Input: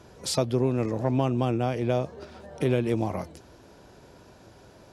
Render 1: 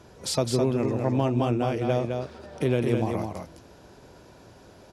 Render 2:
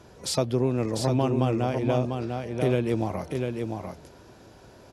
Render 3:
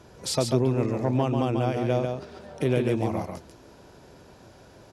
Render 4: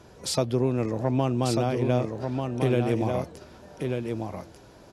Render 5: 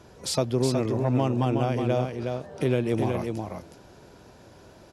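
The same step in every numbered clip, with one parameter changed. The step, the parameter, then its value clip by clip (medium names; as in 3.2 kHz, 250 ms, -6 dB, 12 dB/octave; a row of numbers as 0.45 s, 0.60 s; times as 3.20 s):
delay, time: 210 ms, 697 ms, 142 ms, 1192 ms, 367 ms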